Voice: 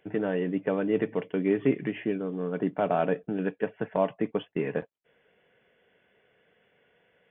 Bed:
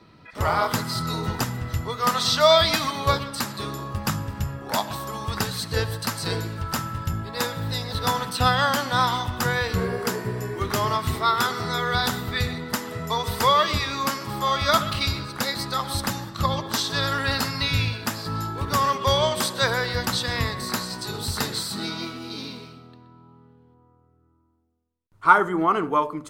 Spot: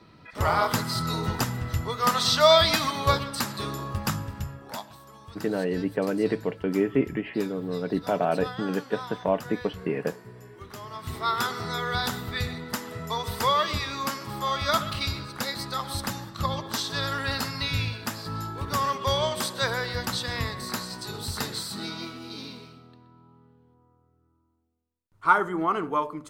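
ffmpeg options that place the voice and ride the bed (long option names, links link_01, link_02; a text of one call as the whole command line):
ffmpeg -i stem1.wav -i stem2.wav -filter_complex "[0:a]adelay=5300,volume=1dB[link_01];[1:a]volume=11.5dB,afade=type=out:start_time=3.93:duration=0.99:silence=0.158489,afade=type=in:start_time=10.91:duration=0.42:silence=0.237137[link_02];[link_01][link_02]amix=inputs=2:normalize=0" out.wav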